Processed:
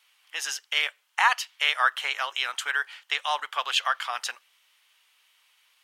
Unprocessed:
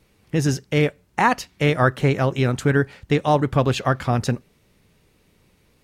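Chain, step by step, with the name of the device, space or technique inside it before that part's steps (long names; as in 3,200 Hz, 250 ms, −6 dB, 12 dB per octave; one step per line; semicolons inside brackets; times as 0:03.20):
headphones lying on a table (high-pass filter 1,000 Hz 24 dB per octave; parametric band 3,100 Hz +10 dB 0.29 octaves)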